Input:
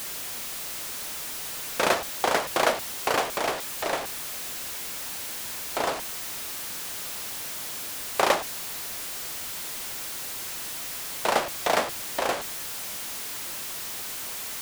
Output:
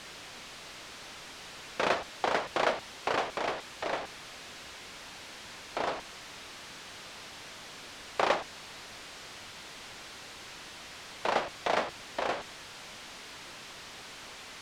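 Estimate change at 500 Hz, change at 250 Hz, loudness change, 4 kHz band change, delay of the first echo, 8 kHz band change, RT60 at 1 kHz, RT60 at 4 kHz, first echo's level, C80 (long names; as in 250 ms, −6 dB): −5.0 dB, −5.0 dB, −7.5 dB, −7.0 dB, no echo audible, −15.0 dB, no reverb audible, no reverb audible, no echo audible, no reverb audible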